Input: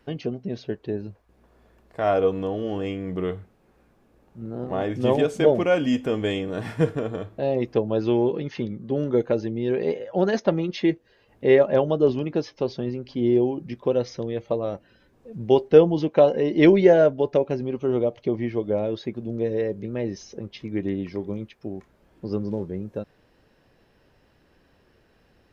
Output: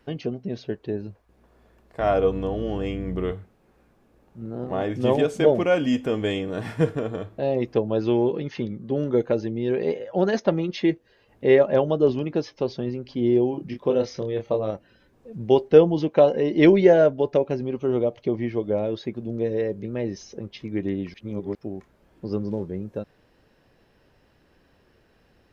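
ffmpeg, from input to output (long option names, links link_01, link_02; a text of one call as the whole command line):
ffmpeg -i in.wav -filter_complex "[0:a]asettb=1/sr,asplit=3[link_01][link_02][link_03];[link_01]atrim=end=2.004[link_04];[link_02]atrim=start=2:end=3.33,asetpts=PTS-STARTPTS,afade=type=in:duration=0.004:curve=qsin,afade=type=out:start_time=1.326:duration=0.004:curve=qsin,aeval=exprs='val(0)+0.0224*(sin(2*PI*60*n/s)+sin(2*PI*2*60*n/s)/2+sin(2*PI*3*60*n/s)/3+sin(2*PI*4*60*n/s)/4+sin(2*PI*5*60*n/s)/5)':channel_layout=same[link_05];[link_03]atrim=start=3.326[link_06];[link_04][link_05]acrossfade=duration=0.004:curve1=hsin:curve2=qsin[link_07];[link_07][link_06]acrossfade=duration=0.004:curve1=qsin:curve2=hsin,asettb=1/sr,asplit=3[link_08][link_09][link_10];[link_08]atrim=end=13.514[link_11];[link_09]atrim=start=13.51:end=14.71,asetpts=PTS-STARTPTS,afade=type=in:duration=0.004:curve=qsin,afade=type=out:start_time=1.196:duration=0.004:curve=qsin,asplit=2[link_12][link_13];[link_13]adelay=28,volume=-6dB[link_14];[link_12][link_14]amix=inputs=2:normalize=0,atrim=end_sample=52920[link_15];[link_10]atrim=start=14.706[link_16];[link_11][link_15]acrossfade=duration=0.004:curve1=hsin:curve2=qsin[link_17];[link_17][link_16]acrossfade=duration=0.004:curve1=qsin:curve2=hsin,asplit=3[link_18][link_19][link_20];[link_18]atrim=end=21.142[link_21];[link_19]atrim=start=21.138:end=21.552,asetpts=PTS-STARTPTS,areverse[link_22];[link_20]atrim=start=21.548[link_23];[link_21][link_22]acrossfade=duration=0.004:curve1=hsin:curve2=hsin[link_24];[link_24][link_23]acrossfade=duration=0.004:curve1=hsin:curve2=hsin" out.wav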